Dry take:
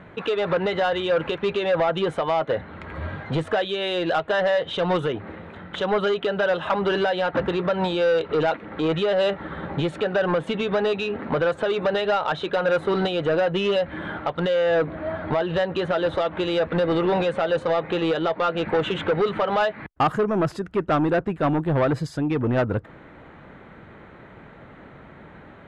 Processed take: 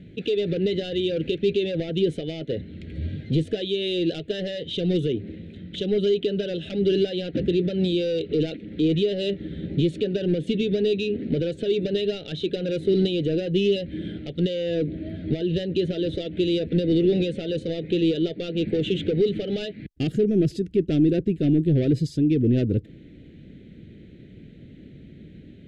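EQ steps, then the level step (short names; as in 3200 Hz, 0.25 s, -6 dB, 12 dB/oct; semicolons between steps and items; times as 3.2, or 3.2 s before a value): Chebyshev band-stop 290–3600 Hz, order 2; high shelf 4600 Hz -5.5 dB; dynamic EQ 410 Hz, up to +5 dB, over -42 dBFS, Q 1.9; +3.5 dB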